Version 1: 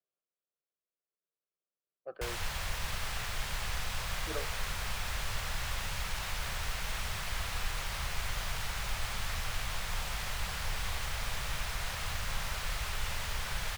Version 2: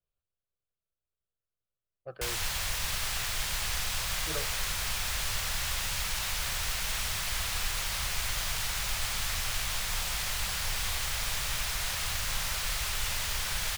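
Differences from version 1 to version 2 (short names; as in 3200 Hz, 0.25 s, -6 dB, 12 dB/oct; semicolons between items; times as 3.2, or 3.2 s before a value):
speech: remove HPF 220 Hz 24 dB/oct; master: add high shelf 2800 Hz +10.5 dB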